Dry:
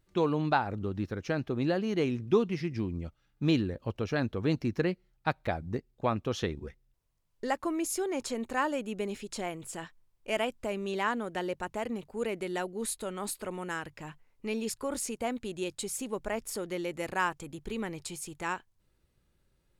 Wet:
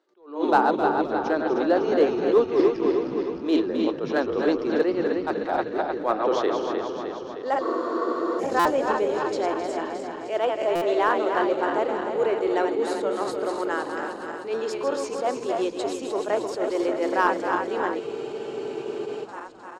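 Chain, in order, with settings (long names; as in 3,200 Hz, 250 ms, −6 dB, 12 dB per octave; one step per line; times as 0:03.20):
feedback delay that plays each chunk backwards 154 ms, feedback 79%, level −6 dB
Butterworth high-pass 320 Hz 36 dB per octave
high-frequency loss of the air 170 metres
in parallel at −5 dB: gain into a clipping stage and back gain 24 dB
on the sum: parametric band 2,400 Hz −10 dB 0.91 octaves
on a send: echo with shifted repeats 261 ms, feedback 33%, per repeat −77 Hz, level −11 dB
on the sum: frozen spectrum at 0:18.01, 1.23 s
buffer that repeats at 0:08.59/0:10.75, samples 256, times 10
frozen spectrum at 0:07.63, 0.76 s
level that may rise only so fast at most 140 dB per second
level +7 dB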